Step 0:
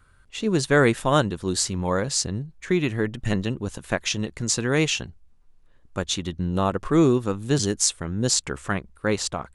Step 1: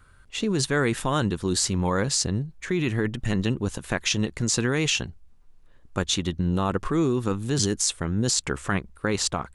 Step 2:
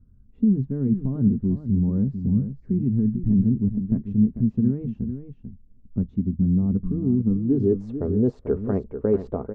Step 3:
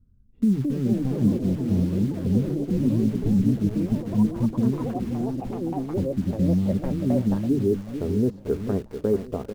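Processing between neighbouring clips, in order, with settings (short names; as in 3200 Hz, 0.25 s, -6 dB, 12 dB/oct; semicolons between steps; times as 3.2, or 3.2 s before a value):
dynamic EQ 600 Hz, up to -5 dB, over -38 dBFS, Q 2.6; in parallel at +1 dB: negative-ratio compressor -25 dBFS, ratio -0.5; on the sum: gain -5.5 dB
low-pass sweep 200 Hz -> 480 Hz, 7.24–7.84; echo 0.443 s -9.5 dB; on a send at -11 dB: reverb RT60 0.10 s, pre-delay 3 ms
in parallel at -6.5 dB: bit-crush 6-bit; on the sum: feedback echo 1.027 s, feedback 55%, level -20 dB; echoes that change speed 0.325 s, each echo +5 st, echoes 3, each echo -6 dB; gain -5 dB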